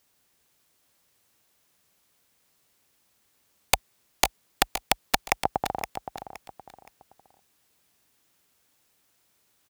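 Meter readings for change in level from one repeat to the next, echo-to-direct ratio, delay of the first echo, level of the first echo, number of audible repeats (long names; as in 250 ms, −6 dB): −10.5 dB, −9.5 dB, 519 ms, −10.0 dB, 3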